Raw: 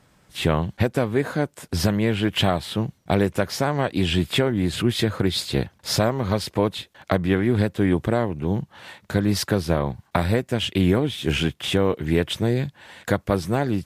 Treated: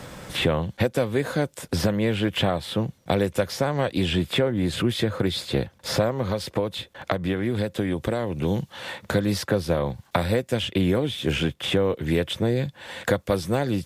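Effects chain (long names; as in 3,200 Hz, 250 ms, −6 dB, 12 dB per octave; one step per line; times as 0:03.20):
0:06.22–0:08.44: downward compressor, threshold −22 dBFS, peak gain reduction 8 dB
hollow resonant body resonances 520/3,500 Hz, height 8 dB
multiband upward and downward compressor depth 70%
level −3 dB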